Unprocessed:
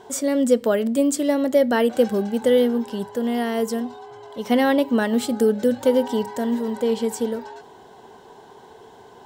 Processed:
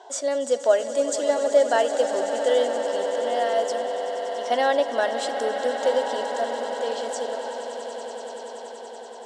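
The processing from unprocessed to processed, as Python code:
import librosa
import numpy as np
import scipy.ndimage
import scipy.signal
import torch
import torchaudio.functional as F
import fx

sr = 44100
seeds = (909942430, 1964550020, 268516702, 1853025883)

y = fx.cabinet(x, sr, low_hz=420.0, low_slope=24, high_hz=7700.0, hz=(450.0, 660.0, 1200.0, 2300.0), db=(-8, 7, -4, -7))
y = fx.echo_swell(y, sr, ms=95, loudest=8, wet_db=-14.5)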